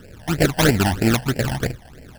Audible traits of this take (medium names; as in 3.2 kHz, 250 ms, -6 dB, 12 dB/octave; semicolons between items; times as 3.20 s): aliases and images of a low sample rate 1.1 kHz, jitter 20%; phasing stages 12, 3.1 Hz, lowest notch 380–1200 Hz